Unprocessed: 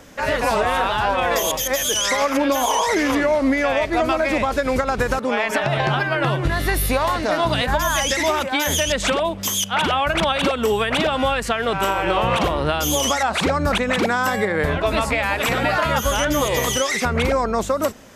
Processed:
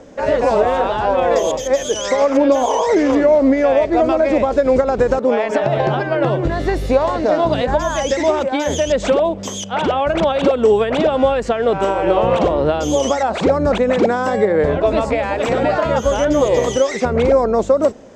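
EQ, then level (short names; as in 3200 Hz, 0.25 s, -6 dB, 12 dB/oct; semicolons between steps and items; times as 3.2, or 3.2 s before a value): EQ curve 120 Hz 0 dB, 520 Hz +9 dB, 1200 Hz -3 dB, 2600 Hz -6 dB, 7500 Hz -5 dB, 11000 Hz -26 dB; 0.0 dB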